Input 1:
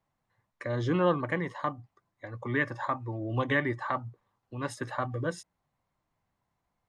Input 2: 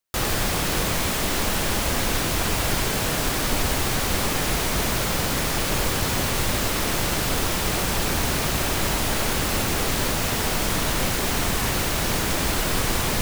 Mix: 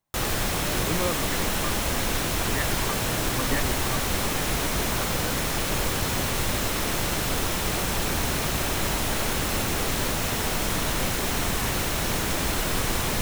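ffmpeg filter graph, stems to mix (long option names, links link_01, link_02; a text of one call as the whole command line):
ffmpeg -i stem1.wav -i stem2.wav -filter_complex "[0:a]volume=-4dB[link_01];[1:a]bandreject=frequency=4700:width=23,volume=-2.5dB[link_02];[link_01][link_02]amix=inputs=2:normalize=0" out.wav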